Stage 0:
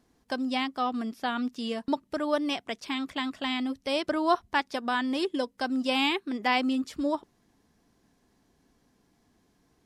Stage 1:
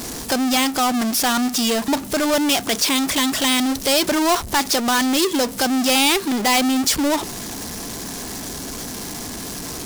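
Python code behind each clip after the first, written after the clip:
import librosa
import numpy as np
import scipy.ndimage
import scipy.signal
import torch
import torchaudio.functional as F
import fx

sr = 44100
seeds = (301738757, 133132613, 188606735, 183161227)

y = fx.power_curve(x, sr, exponent=0.35)
y = fx.bass_treble(y, sr, bass_db=-2, treble_db=10)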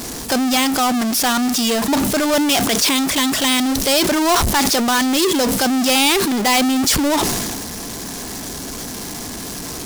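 y = fx.sustainer(x, sr, db_per_s=26.0)
y = F.gain(torch.from_numpy(y), 1.5).numpy()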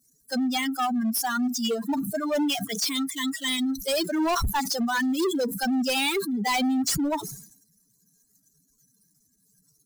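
y = fx.bin_expand(x, sr, power=3.0)
y = np.clip(y, -10.0 ** (-20.5 / 20.0), 10.0 ** (-20.5 / 20.0))
y = F.gain(torch.from_numpy(y), -1.0).numpy()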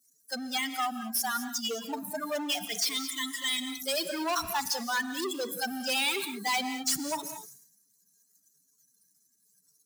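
y = fx.highpass(x, sr, hz=830.0, slope=6)
y = fx.rev_gated(y, sr, seeds[0], gate_ms=240, shape='rising', drr_db=9.5)
y = F.gain(torch.from_numpy(y), -2.0).numpy()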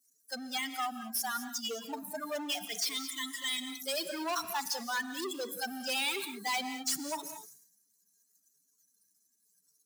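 y = scipy.signal.sosfilt(scipy.signal.butter(2, 200.0, 'highpass', fs=sr, output='sos'), x)
y = F.gain(torch.from_numpy(y), -4.0).numpy()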